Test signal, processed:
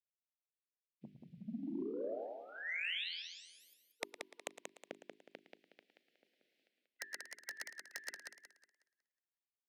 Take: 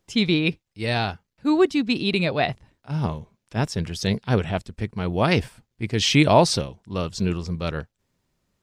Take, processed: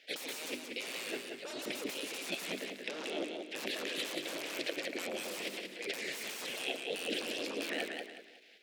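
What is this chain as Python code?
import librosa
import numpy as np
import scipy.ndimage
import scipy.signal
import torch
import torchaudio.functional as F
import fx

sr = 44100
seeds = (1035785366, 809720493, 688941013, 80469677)

p1 = fx.spec_gate(x, sr, threshold_db=-20, keep='weak')
p2 = scipy.signal.sosfilt(scipy.signal.cheby1(2, 1.0, [520.0, 2200.0], 'bandstop', fs=sr, output='sos'), p1)
p3 = fx.level_steps(p2, sr, step_db=12)
p4 = p2 + (p3 * librosa.db_to_amplitude(-1.0))
p5 = 10.0 ** (-21.0 / 20.0) * np.tanh(p4 / 10.0 ** (-21.0 / 20.0))
p6 = fx.air_absorb(p5, sr, metres=370.0)
p7 = fx.fold_sine(p6, sr, drive_db=17, ceiling_db=-24.5)
p8 = scipy.signal.sosfilt(scipy.signal.butter(4, 220.0, 'highpass', fs=sr, output='sos'), p7)
p9 = fx.high_shelf(p8, sr, hz=4000.0, db=3.5)
p10 = fx.hum_notches(p9, sr, base_hz=50, count=8)
p11 = fx.over_compress(p10, sr, threshold_db=-37.0, ratio=-1.0)
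p12 = p11 + fx.echo_single(p11, sr, ms=111, db=-13.5, dry=0)
p13 = fx.echo_warbled(p12, sr, ms=183, feedback_pct=33, rate_hz=2.8, cents=96, wet_db=-5.0)
y = p13 * librosa.db_to_amplitude(-4.0)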